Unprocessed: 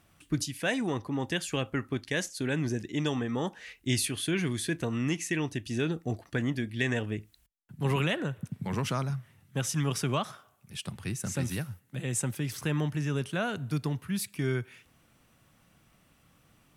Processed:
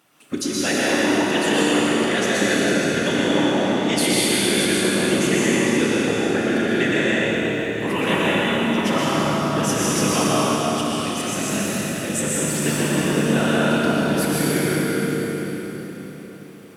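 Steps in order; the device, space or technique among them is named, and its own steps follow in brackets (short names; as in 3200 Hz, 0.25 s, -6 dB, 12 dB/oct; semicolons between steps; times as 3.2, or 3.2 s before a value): 8.89–9.65 doubler 38 ms -4 dB; whispering ghost (whisperiser; HPF 260 Hz 12 dB/oct; reverb RT60 3.4 s, pre-delay 0.113 s, DRR -5.5 dB); Schroeder reverb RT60 3.7 s, combs from 27 ms, DRR 0 dB; gain +5 dB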